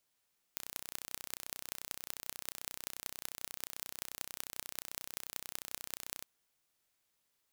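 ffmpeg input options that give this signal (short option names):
-f lavfi -i "aevalsrc='0.316*eq(mod(n,1409),0)*(0.5+0.5*eq(mod(n,8454),0))':d=5.66:s=44100"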